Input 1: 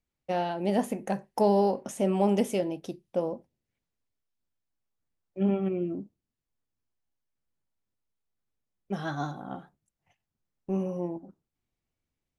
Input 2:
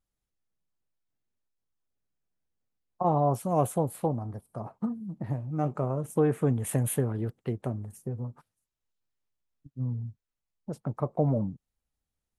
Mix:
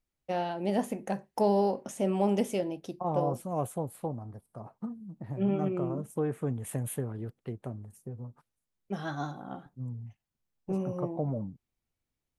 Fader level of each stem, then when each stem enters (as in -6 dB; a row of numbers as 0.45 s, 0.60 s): -2.5 dB, -6.5 dB; 0.00 s, 0.00 s